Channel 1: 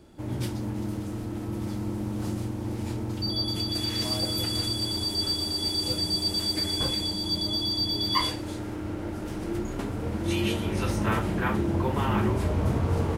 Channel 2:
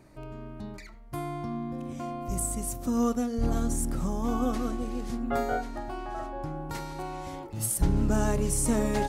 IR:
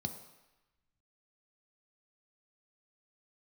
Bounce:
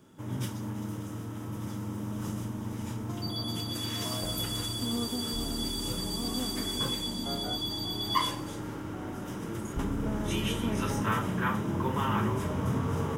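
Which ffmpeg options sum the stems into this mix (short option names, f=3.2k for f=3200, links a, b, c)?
-filter_complex "[0:a]aemphasis=mode=production:type=riaa,volume=1dB,asplit=2[a][b];[b]volume=-7dB[c];[1:a]adelay=1950,volume=-10.5dB[d];[2:a]atrim=start_sample=2205[e];[c][e]afir=irnorm=-1:irlink=0[f];[a][d][f]amix=inputs=3:normalize=0,lowpass=f=1.6k:p=1,equalizer=f=280:t=o:w=0.37:g=7.5"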